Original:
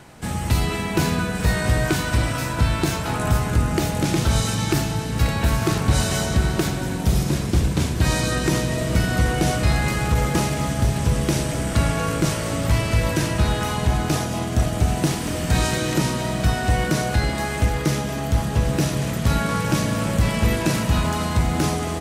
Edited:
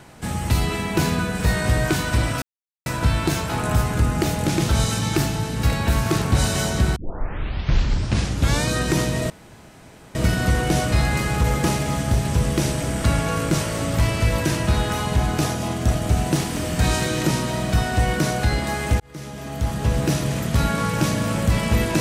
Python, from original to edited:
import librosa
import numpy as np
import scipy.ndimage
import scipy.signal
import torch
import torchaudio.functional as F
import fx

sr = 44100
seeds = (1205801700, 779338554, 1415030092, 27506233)

y = fx.edit(x, sr, fx.insert_silence(at_s=2.42, length_s=0.44),
    fx.tape_start(start_s=6.52, length_s=1.72),
    fx.insert_room_tone(at_s=8.86, length_s=0.85),
    fx.fade_in_span(start_s=17.71, length_s=0.93), tone=tone)